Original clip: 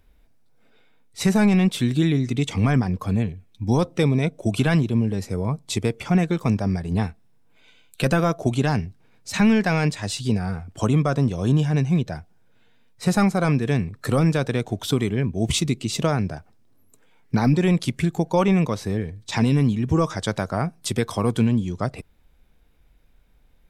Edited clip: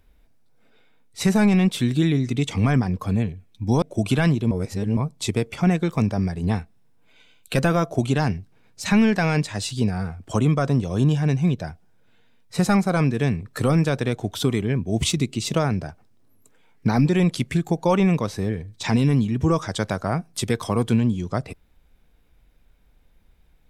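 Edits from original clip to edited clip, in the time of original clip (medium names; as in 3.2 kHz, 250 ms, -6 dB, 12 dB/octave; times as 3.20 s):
3.82–4.30 s: delete
4.99–5.45 s: reverse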